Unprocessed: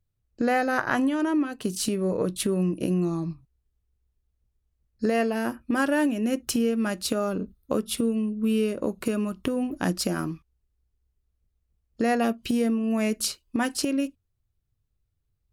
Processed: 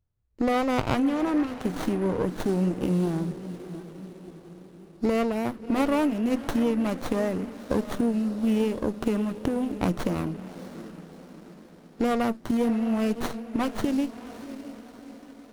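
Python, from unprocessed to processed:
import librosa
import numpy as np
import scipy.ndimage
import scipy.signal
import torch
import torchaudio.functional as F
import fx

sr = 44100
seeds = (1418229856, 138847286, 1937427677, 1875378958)

y = fx.echo_diffused(x, sr, ms=659, feedback_pct=52, wet_db=-13)
y = fx.vibrato(y, sr, rate_hz=5.0, depth_cents=47.0)
y = fx.running_max(y, sr, window=17)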